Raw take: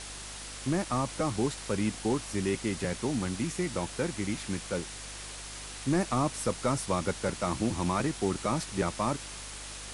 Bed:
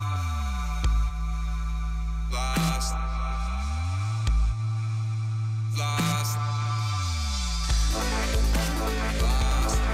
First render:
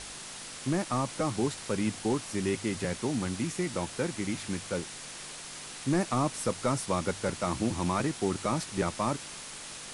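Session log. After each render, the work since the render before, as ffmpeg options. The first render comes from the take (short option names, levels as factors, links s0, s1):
-af "bandreject=f=50:t=h:w=4,bandreject=f=100:t=h:w=4"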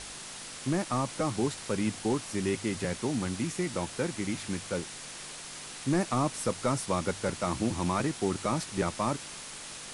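-af anull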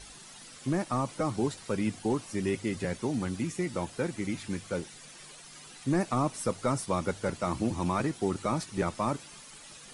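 -af "afftdn=nr=11:nf=-43"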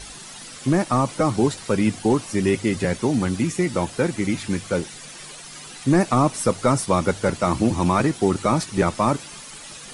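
-af "volume=3.16"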